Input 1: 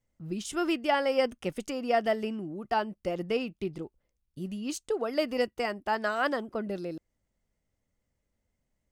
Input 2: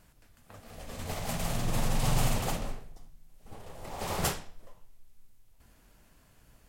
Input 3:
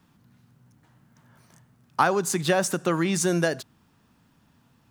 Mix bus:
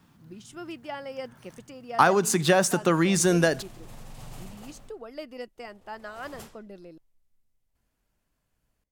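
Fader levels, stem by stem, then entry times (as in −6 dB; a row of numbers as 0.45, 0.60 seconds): −10.5, −16.0, +2.0 decibels; 0.00, 2.15, 0.00 seconds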